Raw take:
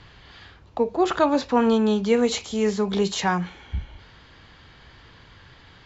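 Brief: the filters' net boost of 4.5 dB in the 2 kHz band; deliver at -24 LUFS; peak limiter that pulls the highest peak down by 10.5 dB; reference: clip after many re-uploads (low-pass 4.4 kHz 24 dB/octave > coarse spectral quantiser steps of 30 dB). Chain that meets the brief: peaking EQ 2 kHz +6 dB; peak limiter -18 dBFS; low-pass 4.4 kHz 24 dB/octave; coarse spectral quantiser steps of 30 dB; trim +4 dB

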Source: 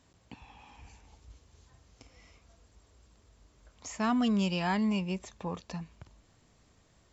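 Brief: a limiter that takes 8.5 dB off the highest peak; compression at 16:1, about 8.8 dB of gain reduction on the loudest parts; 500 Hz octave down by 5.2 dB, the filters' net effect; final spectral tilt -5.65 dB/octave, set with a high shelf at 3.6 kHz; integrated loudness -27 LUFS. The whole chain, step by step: peaking EQ 500 Hz -7 dB; treble shelf 3.6 kHz -9 dB; compression 16:1, threshold -35 dBFS; trim +20 dB; peak limiter -17 dBFS

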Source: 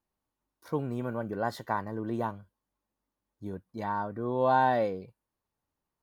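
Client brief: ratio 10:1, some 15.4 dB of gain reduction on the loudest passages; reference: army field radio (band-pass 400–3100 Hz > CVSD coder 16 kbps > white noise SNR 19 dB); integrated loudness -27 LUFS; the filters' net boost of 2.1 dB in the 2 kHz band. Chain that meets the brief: peaking EQ 2 kHz +3.5 dB; compression 10:1, threshold -35 dBFS; band-pass 400–3100 Hz; CVSD coder 16 kbps; white noise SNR 19 dB; trim +16.5 dB

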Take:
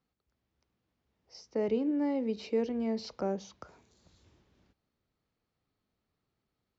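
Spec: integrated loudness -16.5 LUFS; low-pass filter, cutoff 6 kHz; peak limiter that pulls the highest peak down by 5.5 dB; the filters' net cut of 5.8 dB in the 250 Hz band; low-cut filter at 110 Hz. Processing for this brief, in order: high-pass 110 Hz; low-pass 6 kHz; peaking EQ 250 Hz -6.5 dB; trim +22 dB; peak limiter -6.5 dBFS

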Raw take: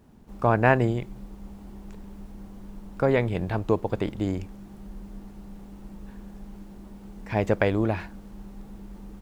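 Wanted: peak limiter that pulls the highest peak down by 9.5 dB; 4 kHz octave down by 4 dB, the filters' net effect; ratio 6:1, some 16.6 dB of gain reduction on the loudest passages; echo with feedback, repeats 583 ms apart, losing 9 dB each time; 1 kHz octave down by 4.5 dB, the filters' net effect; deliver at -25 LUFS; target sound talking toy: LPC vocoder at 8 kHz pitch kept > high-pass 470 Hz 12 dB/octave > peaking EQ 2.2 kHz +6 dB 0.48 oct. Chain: peaking EQ 1 kHz -5.5 dB; peaking EQ 4 kHz -7 dB; compression 6:1, threshold -36 dBFS; peak limiter -33.5 dBFS; feedback delay 583 ms, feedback 35%, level -9 dB; LPC vocoder at 8 kHz pitch kept; high-pass 470 Hz 12 dB/octave; peaking EQ 2.2 kHz +6 dB 0.48 oct; trim +28 dB

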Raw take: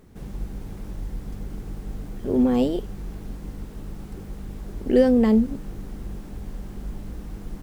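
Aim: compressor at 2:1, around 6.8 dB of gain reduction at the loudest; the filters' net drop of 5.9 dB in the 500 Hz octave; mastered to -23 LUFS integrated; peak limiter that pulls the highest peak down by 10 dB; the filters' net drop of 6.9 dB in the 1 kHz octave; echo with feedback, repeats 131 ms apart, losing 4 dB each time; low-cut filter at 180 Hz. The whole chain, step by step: high-pass 180 Hz; peaking EQ 500 Hz -5 dB; peaking EQ 1 kHz -7.5 dB; compression 2:1, threshold -30 dBFS; peak limiter -28.5 dBFS; feedback delay 131 ms, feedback 63%, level -4 dB; trim +16 dB

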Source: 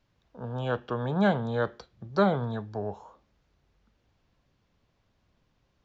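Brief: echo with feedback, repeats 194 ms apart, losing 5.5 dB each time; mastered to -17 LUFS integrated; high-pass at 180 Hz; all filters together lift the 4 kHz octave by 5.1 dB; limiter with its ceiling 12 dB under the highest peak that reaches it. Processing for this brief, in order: high-pass 180 Hz; peaking EQ 4 kHz +6 dB; peak limiter -24 dBFS; feedback delay 194 ms, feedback 53%, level -5.5 dB; trim +17.5 dB

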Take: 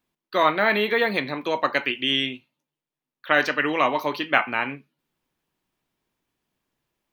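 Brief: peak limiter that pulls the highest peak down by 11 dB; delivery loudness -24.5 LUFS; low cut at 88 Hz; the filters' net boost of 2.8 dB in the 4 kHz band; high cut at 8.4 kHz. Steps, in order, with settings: high-pass 88 Hz; low-pass 8.4 kHz; peaking EQ 4 kHz +4 dB; trim +1 dB; peak limiter -12 dBFS

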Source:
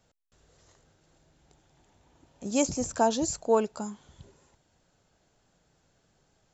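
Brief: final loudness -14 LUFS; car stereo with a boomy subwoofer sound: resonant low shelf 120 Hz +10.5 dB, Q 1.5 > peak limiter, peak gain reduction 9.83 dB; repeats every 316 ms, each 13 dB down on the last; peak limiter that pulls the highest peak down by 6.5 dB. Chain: peak limiter -17 dBFS; resonant low shelf 120 Hz +10.5 dB, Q 1.5; feedback delay 316 ms, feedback 22%, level -13 dB; trim +23.5 dB; peak limiter -3.5 dBFS

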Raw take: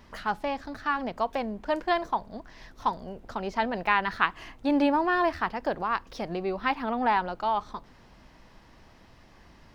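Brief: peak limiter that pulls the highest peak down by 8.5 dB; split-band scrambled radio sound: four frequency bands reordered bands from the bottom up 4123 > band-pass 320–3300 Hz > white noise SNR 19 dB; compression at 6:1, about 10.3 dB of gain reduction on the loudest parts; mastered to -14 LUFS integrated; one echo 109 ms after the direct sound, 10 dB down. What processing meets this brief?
compression 6:1, threshold -31 dBFS; peak limiter -27 dBFS; delay 109 ms -10 dB; four frequency bands reordered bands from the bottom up 4123; band-pass 320–3300 Hz; white noise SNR 19 dB; trim +22 dB

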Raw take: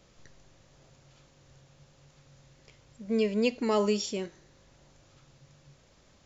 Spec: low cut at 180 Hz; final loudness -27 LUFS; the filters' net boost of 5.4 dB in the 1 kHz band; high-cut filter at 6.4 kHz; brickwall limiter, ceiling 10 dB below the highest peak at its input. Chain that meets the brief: high-pass 180 Hz; low-pass 6.4 kHz; peaking EQ 1 kHz +6.5 dB; trim +6 dB; peak limiter -16.5 dBFS

